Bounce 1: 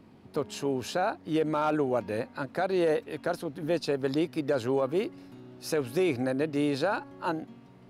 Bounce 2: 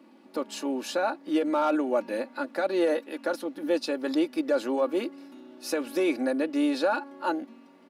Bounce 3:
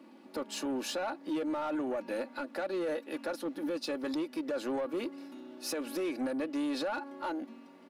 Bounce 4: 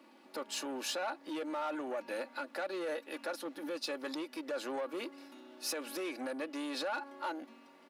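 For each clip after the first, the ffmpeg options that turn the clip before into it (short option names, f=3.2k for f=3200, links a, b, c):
-af "highpass=f=240:w=0.5412,highpass=f=240:w=1.3066,aecho=1:1:3.5:0.69"
-af "alimiter=limit=-23.5dB:level=0:latency=1:release=182,asoftclip=type=tanh:threshold=-28dB"
-af "highpass=f=710:p=1,volume=1dB"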